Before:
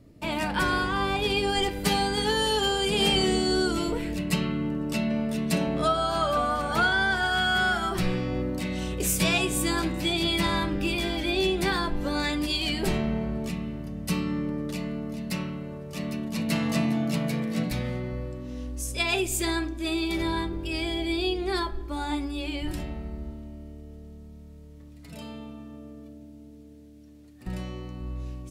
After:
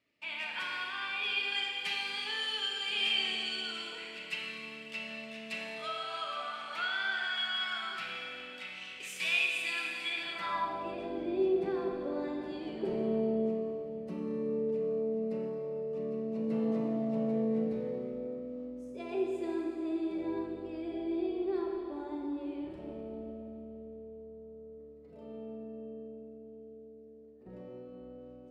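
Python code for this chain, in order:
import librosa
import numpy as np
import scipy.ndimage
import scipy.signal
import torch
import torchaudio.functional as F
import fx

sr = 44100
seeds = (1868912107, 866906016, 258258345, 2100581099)

y = fx.rev_schroeder(x, sr, rt60_s=2.8, comb_ms=28, drr_db=0.0)
y = fx.filter_sweep_bandpass(y, sr, from_hz=2500.0, to_hz=430.0, start_s=10.05, end_s=11.16, q=2.4)
y = y * 10.0 ** (-3.0 / 20.0)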